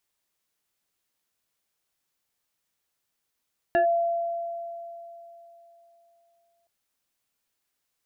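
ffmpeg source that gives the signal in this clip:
-f lavfi -i "aevalsrc='0.141*pow(10,-3*t/3.36)*sin(2*PI*681*t+0.81*clip(1-t/0.11,0,1)*sin(2*PI*1.52*681*t))':d=2.92:s=44100"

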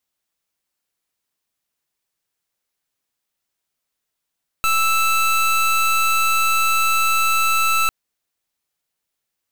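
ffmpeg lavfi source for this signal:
-f lavfi -i "aevalsrc='0.141*(2*lt(mod(1320*t,1),0.25)-1)':d=3.25:s=44100"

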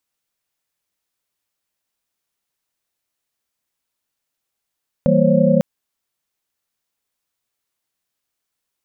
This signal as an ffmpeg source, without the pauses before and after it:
-f lavfi -i "aevalsrc='0.133*(sin(2*PI*164.81*t)+sin(2*PI*196*t)+sin(2*PI*233.08*t)+sin(2*PI*523.25*t)+sin(2*PI*554.37*t))':d=0.55:s=44100"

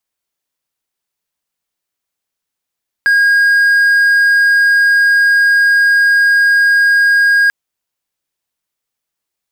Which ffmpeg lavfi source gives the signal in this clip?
-f lavfi -i "aevalsrc='0.562*(1-4*abs(mod(1630*t+0.25,1)-0.5))':d=4.44:s=44100"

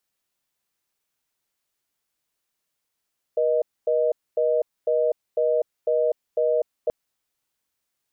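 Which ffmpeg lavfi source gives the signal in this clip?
-f lavfi -i "aevalsrc='0.0891*(sin(2*PI*480*t)+sin(2*PI*620*t))*clip(min(mod(t,0.5),0.25-mod(t,0.5))/0.005,0,1)':d=3.53:s=44100"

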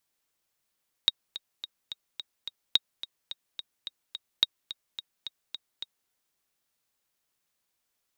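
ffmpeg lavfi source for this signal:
-f lavfi -i "aevalsrc='pow(10,(-7-15.5*gte(mod(t,6*60/215),60/215))/20)*sin(2*PI*3770*mod(t,60/215))*exp(-6.91*mod(t,60/215)/0.03)':d=5.02:s=44100"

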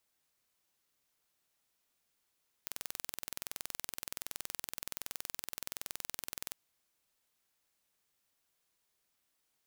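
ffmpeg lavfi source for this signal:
-f lavfi -i "aevalsrc='0.266*eq(mod(n,2070),0)':d=3.88:s=44100"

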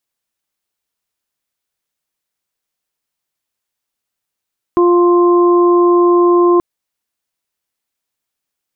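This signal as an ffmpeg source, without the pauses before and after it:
-f lavfi -i "aevalsrc='0.422*sin(2*PI*350*t)+0.0668*sin(2*PI*700*t)+0.178*sin(2*PI*1050*t)':d=1.83:s=44100"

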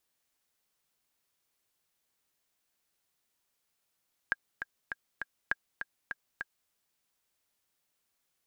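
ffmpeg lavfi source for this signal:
-f lavfi -i "aevalsrc='pow(10,(-14.5-8*gte(mod(t,4*60/201),60/201))/20)*sin(2*PI*1620*mod(t,60/201))*exp(-6.91*mod(t,60/201)/0.03)':d=2.38:s=44100"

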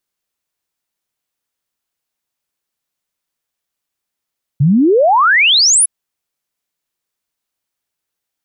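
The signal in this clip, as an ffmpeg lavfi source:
-f lavfi -i "aevalsrc='0.447*clip(min(t,1.26-t)/0.01,0,1)*sin(2*PI*130*1.26/log(11000/130)*(exp(log(11000/130)*t/1.26)-1))':d=1.26:s=44100"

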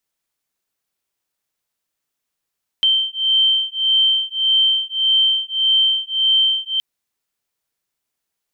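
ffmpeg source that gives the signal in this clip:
-f lavfi -i "aevalsrc='0.141*(sin(2*PI*3120*t)+sin(2*PI*3121.7*t))':d=3.97:s=44100"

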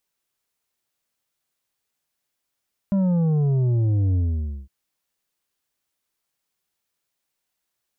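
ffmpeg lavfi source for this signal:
-f lavfi -i "aevalsrc='0.126*clip((1.76-t)/0.53,0,1)*tanh(2.24*sin(2*PI*200*1.76/log(65/200)*(exp(log(65/200)*t/1.76)-1)))/tanh(2.24)':d=1.76:s=44100"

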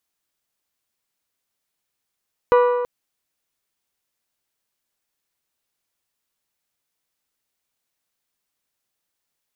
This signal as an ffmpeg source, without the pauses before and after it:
-f lavfi -i "aevalsrc='0.299*pow(10,-3*t/1.6)*sin(2*PI*489*t)+0.158*pow(10,-3*t/1.3)*sin(2*PI*978*t)+0.0841*pow(10,-3*t/1.23)*sin(2*PI*1173.6*t)+0.0447*pow(10,-3*t/1.151)*sin(2*PI*1467*t)+0.0237*pow(10,-3*t/1.056)*sin(2*PI*1956*t)+0.0126*pow(10,-3*t/0.987)*sin(2*PI*2445*t)+0.00668*pow(10,-3*t/0.935)*sin(2*PI*2934*t)+0.00355*pow(10,-3*t/0.857)*sin(2*PI*3912*t)':d=0.33:s=44100"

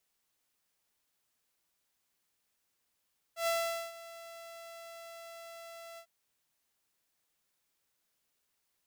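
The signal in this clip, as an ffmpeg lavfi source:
-f lavfi -i "aevalsrc='0.0531*(2*mod(670*t,1)-1)':d=2.699:s=44100,afade=t=in:d=0.11,afade=t=out:st=0.11:d=0.448:silence=0.119,afade=t=out:st=2.62:d=0.079"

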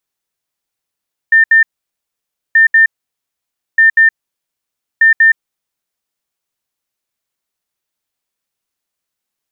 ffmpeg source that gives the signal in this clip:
-f lavfi -i "aevalsrc='0.631*sin(2*PI*1800*t)*clip(min(mod(mod(t,1.23),0.19),0.12-mod(mod(t,1.23),0.19))/0.005,0,1)*lt(mod(t,1.23),0.38)':d=4.92:s=44100"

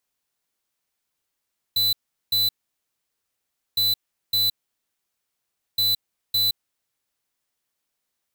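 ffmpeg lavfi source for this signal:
-f lavfi -i "aevalsrc='0.0944*(2*lt(mod(4000*t,1),0.5)-1)*clip(min(mod(mod(t,2.01),0.56),0.17-mod(mod(t,2.01),0.56))/0.005,0,1)*lt(mod(t,2.01),1.12)':d=6.03:s=44100"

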